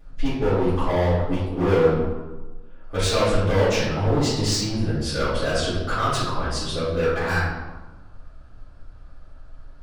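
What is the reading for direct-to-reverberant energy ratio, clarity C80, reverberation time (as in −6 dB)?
−13.5 dB, 3.0 dB, 1.2 s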